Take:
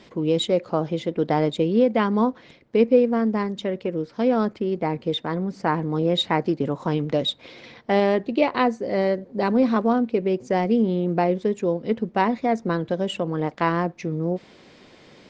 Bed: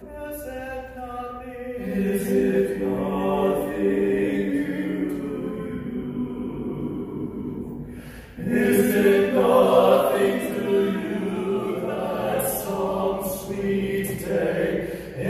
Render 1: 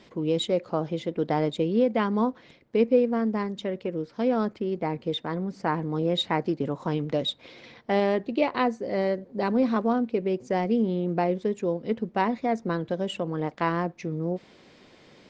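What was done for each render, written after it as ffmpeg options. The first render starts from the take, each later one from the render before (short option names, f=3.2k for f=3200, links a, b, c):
-af "volume=-4dB"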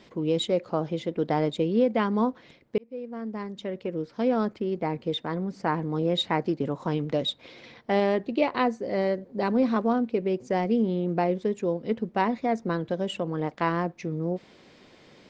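-filter_complex "[0:a]asplit=2[a][b];[a]atrim=end=2.78,asetpts=PTS-STARTPTS,afade=t=out:st=2.776:d=0.004:c=hsin[c];[b]atrim=start=2.78,asetpts=PTS-STARTPTS,afade=t=in:d=1.24[d];[c][d]concat=n=2:v=0:a=1"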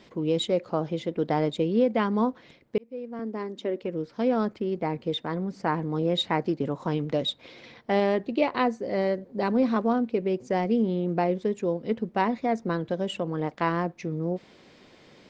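-filter_complex "[0:a]asettb=1/sr,asplit=3[a][b][c];[a]atrim=end=3.194[d];[b]atrim=start=3.19:end=3.83,asetpts=PTS-STARTPTS,afade=t=in:d=0.004:c=qsin,afade=t=out:st=0.636:d=0.004:c=qsin,highpass=f=300:t=q:w=2.6[e];[c]atrim=start=3.826[f];[d][e]acrossfade=d=0.004:c1=hsin:c2=qsin[g];[g][f]acrossfade=d=0.004:c1=qsin:c2=hsin"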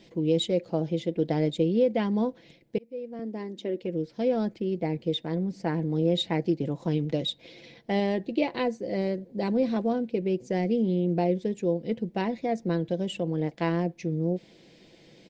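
-af "equalizer=f=1.2k:t=o:w=0.88:g=-14.5,aecho=1:1:6:0.37"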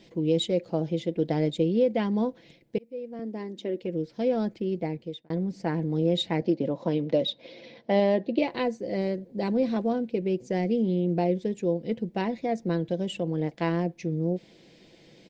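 -filter_complex "[0:a]asettb=1/sr,asplit=3[a][b][c];[a]atrim=end=6.414[d];[b]atrim=start=6.41:end=8.39,asetpts=PTS-STARTPTS,afade=t=in:d=0.004:c=qsin,afade=t=out:st=1.976:d=0.004:c=qsin,highpass=110,equalizer=f=150:t=q:w=4:g=-4,equalizer=f=240:t=q:w=4:g=5,equalizer=f=570:t=q:w=4:g=10,equalizer=f=990:t=q:w=4:g=4,lowpass=f=5.6k:w=0.5412,lowpass=f=5.6k:w=1.3066[e];[c]atrim=start=8.386[f];[d][e]acrossfade=d=0.004:c1=hsin:c2=qsin[g];[g][f]acrossfade=d=0.004:c1=qsin:c2=hsin,asplit=2[h][i];[h]atrim=end=5.3,asetpts=PTS-STARTPTS,afade=t=out:st=4.77:d=0.53[j];[i]atrim=start=5.3,asetpts=PTS-STARTPTS,afade=t=in:d=0.004:c=hsin[k];[j][k]concat=n=2:v=0:a=1"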